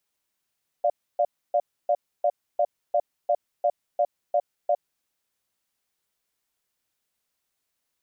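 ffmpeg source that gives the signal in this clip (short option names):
-f lavfi -i "aevalsrc='0.0891*(sin(2*PI*589*t)+sin(2*PI*700*t))*clip(min(mod(t,0.35),0.06-mod(t,0.35))/0.005,0,1)':d=4.02:s=44100"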